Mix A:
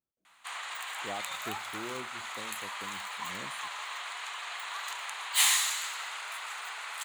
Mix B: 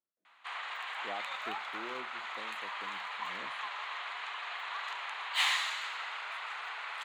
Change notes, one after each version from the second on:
speech: add low shelf 500 Hz -6 dB; master: add three-band isolator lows -18 dB, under 170 Hz, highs -23 dB, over 4100 Hz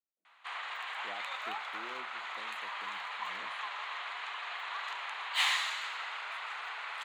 speech -5.5 dB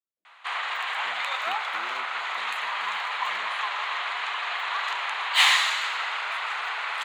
background +10.5 dB

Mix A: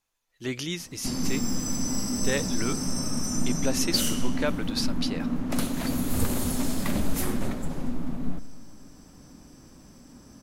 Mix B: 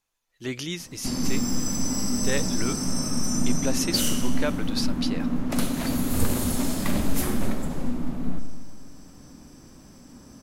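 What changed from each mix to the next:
background: send +11.5 dB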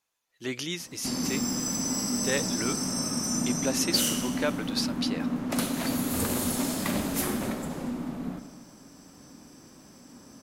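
master: add HPF 220 Hz 6 dB/oct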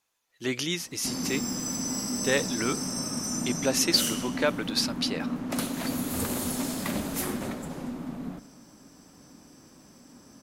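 speech +3.5 dB; background: send -9.5 dB

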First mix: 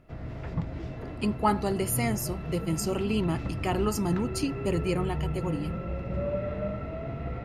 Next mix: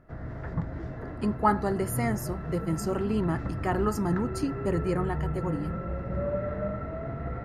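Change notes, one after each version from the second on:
master: add resonant high shelf 2100 Hz -6 dB, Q 3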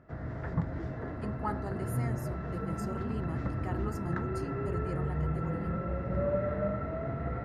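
speech -12.0 dB; master: add HPF 52 Hz

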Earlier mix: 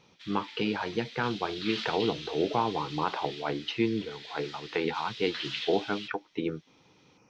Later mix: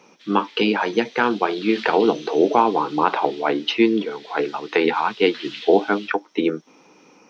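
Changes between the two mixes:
speech +11.5 dB; master: add HPF 210 Hz 24 dB/oct

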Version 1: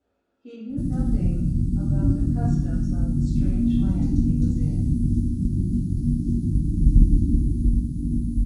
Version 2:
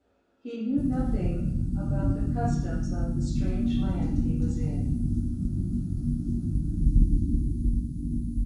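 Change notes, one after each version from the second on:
speech +5.0 dB; background -5.5 dB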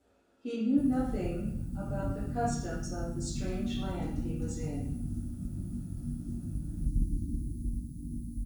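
background -9.0 dB; master: remove air absorption 77 m

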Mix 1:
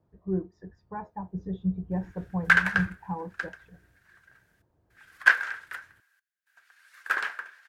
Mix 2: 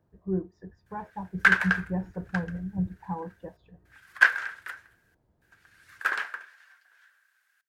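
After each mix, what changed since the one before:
background: entry -1.05 s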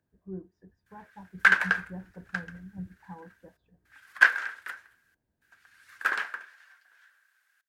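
speech -11.5 dB; master: add bell 250 Hz +6 dB 0.4 oct

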